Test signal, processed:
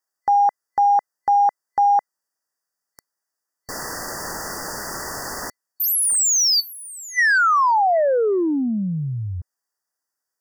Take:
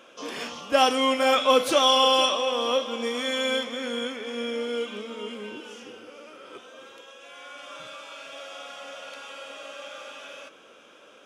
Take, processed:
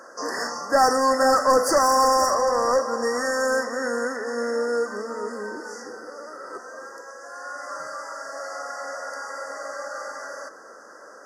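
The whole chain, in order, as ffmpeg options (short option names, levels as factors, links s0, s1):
-filter_complex "[0:a]asplit=2[s0][s1];[s1]highpass=f=720:p=1,volume=8.91,asoftclip=type=tanh:threshold=0.473[s2];[s0][s2]amix=inputs=2:normalize=0,lowpass=f=7400:p=1,volume=0.501,afftfilt=real='re*(1-between(b*sr/4096,2000,4500))':imag='im*(1-between(b*sr/4096,2000,4500))':win_size=4096:overlap=0.75,volume=0.75"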